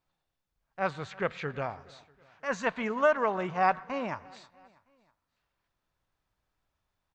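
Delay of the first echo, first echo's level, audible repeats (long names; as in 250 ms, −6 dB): 321 ms, −24.0 dB, 3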